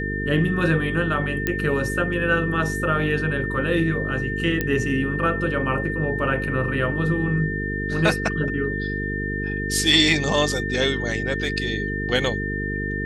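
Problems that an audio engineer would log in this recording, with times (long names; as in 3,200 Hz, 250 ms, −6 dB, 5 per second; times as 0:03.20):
mains buzz 50 Hz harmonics 9 −28 dBFS
whistle 1,800 Hz −28 dBFS
0:01.47: click −8 dBFS
0:04.61: click −9 dBFS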